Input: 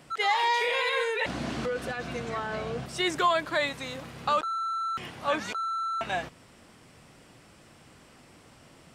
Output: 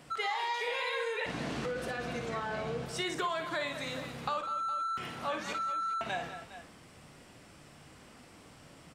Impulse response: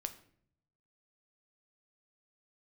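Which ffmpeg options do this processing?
-filter_complex "[0:a]flanger=delay=4.1:depth=3:regen=89:speed=0.97:shape=sinusoidal,aecho=1:1:54|197|409:0.398|0.188|0.126,asplit=2[link_01][link_02];[1:a]atrim=start_sample=2205[link_03];[link_02][link_03]afir=irnorm=-1:irlink=0,volume=-5dB[link_04];[link_01][link_04]amix=inputs=2:normalize=0,acompressor=threshold=-33dB:ratio=3"

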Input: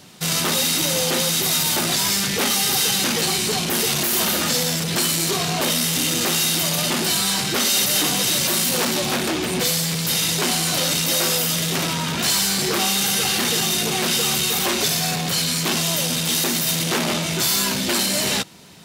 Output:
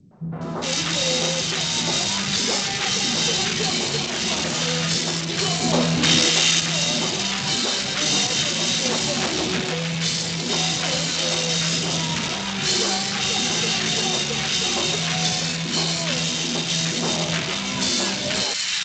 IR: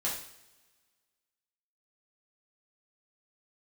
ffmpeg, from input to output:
-filter_complex "[0:a]asettb=1/sr,asplit=3[link_01][link_02][link_03];[link_01]atrim=end=5.624[link_04];[link_02]atrim=start=5.62:end=6.19,asetpts=PTS-STARTPTS,afade=type=in:duration=0.004:curve=qsin,afade=type=out:start_time=0.566:duration=0.004:curve=qsin,acontrast=89[link_05];[link_03]atrim=start=6.186[link_06];[link_04][link_05]acrossfade=duration=0.004:curve1=hsin:curve2=qsin[link_07];[link_07][link_06]acrossfade=duration=0.004:curve1=qsin:curve2=hsin,acrossover=split=320|1200[link_08][link_09][link_10];[link_09]adelay=110[link_11];[link_10]adelay=410[link_12];[link_08][link_11][link_12]amix=inputs=3:normalize=0" -ar 16000 -c:a g722

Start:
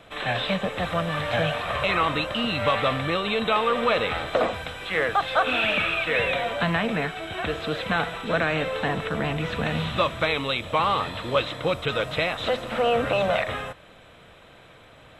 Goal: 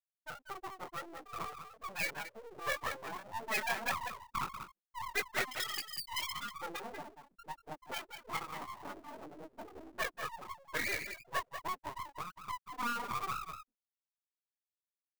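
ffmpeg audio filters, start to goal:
ffmpeg -i in.wav -filter_complex "[0:a]equalizer=frequency=1600:width=0.34:gain=-9,acrusher=samples=6:mix=1:aa=0.000001,afftfilt=real='re*gte(hypot(re,im),0.158)':imag='im*gte(hypot(re,im),0.158)':win_size=1024:overlap=0.75,highpass=frequency=1200:poles=1,asplit=2[link_01][link_02];[link_02]adelay=190,highpass=300,lowpass=3400,asoftclip=type=hard:threshold=-23.5dB,volume=-8dB[link_03];[link_01][link_03]amix=inputs=2:normalize=0,acrossover=split=3100[link_04][link_05];[link_05]acompressor=threshold=-46dB:ratio=4:attack=1:release=60[link_06];[link_04][link_06]amix=inputs=2:normalize=0,flanger=delay=18:depth=4.3:speed=1.7,aeval=exprs='abs(val(0))':channel_layout=same,aemphasis=mode=production:type=bsi,volume=8.5dB" out.wav

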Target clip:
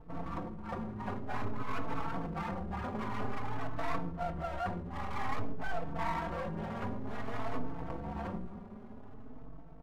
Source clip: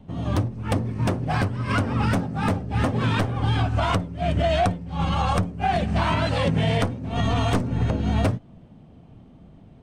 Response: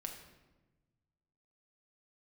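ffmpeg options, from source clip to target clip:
-filter_complex "[0:a]bandreject=frequency=60:width_type=h:width=6,bandreject=frequency=120:width_type=h:width=6,bandreject=frequency=180:width_type=h:width=6,bandreject=frequency=240:width_type=h:width=6,aecho=1:1:4.3:0.38,dynaudnorm=framelen=360:gausssize=9:maxgain=11.5dB,alimiter=limit=-12.5dB:level=0:latency=1:release=113,areverse,acompressor=threshold=-32dB:ratio=4,areverse,lowpass=frequency=1100:width_type=q:width=2.7,aeval=exprs='val(0)+0.00282*(sin(2*PI*50*n/s)+sin(2*PI*2*50*n/s)/2+sin(2*PI*3*50*n/s)/3+sin(2*PI*4*50*n/s)/4+sin(2*PI*5*50*n/s)/5)':channel_layout=same,aeval=exprs='max(val(0),0)':channel_layout=same,asplit=2[link_01][link_02];[1:a]atrim=start_sample=2205,afade=type=out:start_time=0.19:duration=0.01,atrim=end_sample=8820[link_03];[link_02][link_03]afir=irnorm=-1:irlink=0,volume=-6dB[link_04];[link_01][link_04]amix=inputs=2:normalize=0,asplit=2[link_05][link_06];[link_06]adelay=4.1,afreqshift=0.52[link_07];[link_05][link_07]amix=inputs=2:normalize=1,volume=-2dB"

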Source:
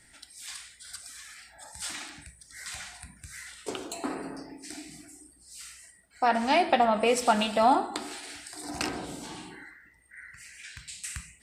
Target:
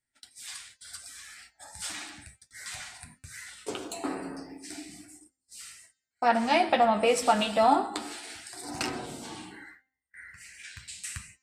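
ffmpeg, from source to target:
ffmpeg -i in.wav -af "agate=range=-29dB:threshold=-50dB:ratio=16:detection=peak,bandreject=frequency=261.5:width_type=h:width=4,bandreject=frequency=523:width_type=h:width=4,bandreject=frequency=784.5:width_type=h:width=4,bandreject=frequency=1046:width_type=h:width=4,bandreject=frequency=1307.5:width_type=h:width=4,bandreject=frequency=1569:width_type=h:width=4,bandreject=frequency=1830.5:width_type=h:width=4,bandreject=frequency=2092:width_type=h:width=4,bandreject=frequency=2353.5:width_type=h:width=4,bandreject=frequency=2615:width_type=h:width=4,bandreject=frequency=2876.5:width_type=h:width=4,bandreject=frequency=3138:width_type=h:width=4,bandreject=frequency=3399.5:width_type=h:width=4,bandreject=frequency=3661:width_type=h:width=4,bandreject=frequency=3922.5:width_type=h:width=4,bandreject=frequency=4184:width_type=h:width=4,bandreject=frequency=4445.5:width_type=h:width=4,bandreject=frequency=4707:width_type=h:width=4,bandreject=frequency=4968.5:width_type=h:width=4,bandreject=frequency=5230:width_type=h:width=4,bandreject=frequency=5491.5:width_type=h:width=4,bandreject=frequency=5753:width_type=h:width=4,bandreject=frequency=6014.5:width_type=h:width=4,bandreject=frequency=6276:width_type=h:width=4,bandreject=frequency=6537.5:width_type=h:width=4,bandreject=frequency=6799:width_type=h:width=4,bandreject=frequency=7060.5:width_type=h:width=4,bandreject=frequency=7322:width_type=h:width=4,flanger=delay=7.7:depth=3.5:regen=-28:speed=0.34:shape=triangular,volume=3.5dB" out.wav

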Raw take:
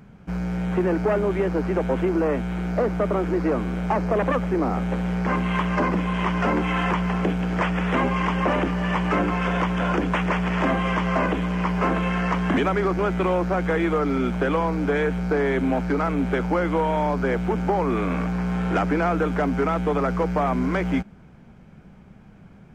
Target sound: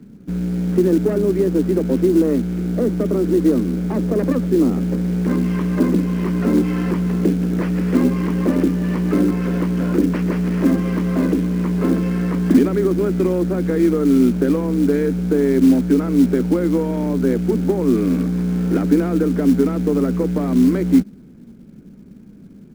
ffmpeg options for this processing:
ffmpeg -i in.wav -filter_complex "[0:a]firequalizer=gain_entry='entry(120,0);entry(250,14);entry(750,-10);entry(1700,-4)':delay=0.05:min_phase=1,acrossover=split=140|520|2000[link_01][link_02][link_03][link_04];[link_02]acrusher=bits=6:mode=log:mix=0:aa=0.000001[link_05];[link_04]aeval=exprs='max(val(0),0)':channel_layout=same[link_06];[link_01][link_05][link_03][link_06]amix=inputs=4:normalize=0,volume=-1dB" out.wav

